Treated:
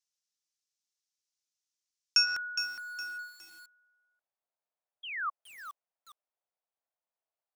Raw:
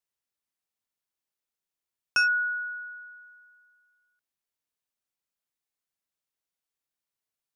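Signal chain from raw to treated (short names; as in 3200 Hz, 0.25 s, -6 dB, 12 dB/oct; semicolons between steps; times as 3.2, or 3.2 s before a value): weighting filter A; painted sound fall, 5.03–5.3, 1100–3400 Hz -29 dBFS; band-pass sweep 5900 Hz -> 650 Hz, 2.71–3.48; stuck buffer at 2.26, samples 512, times 8; lo-fi delay 0.413 s, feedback 35%, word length 9-bit, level -9 dB; gain +8.5 dB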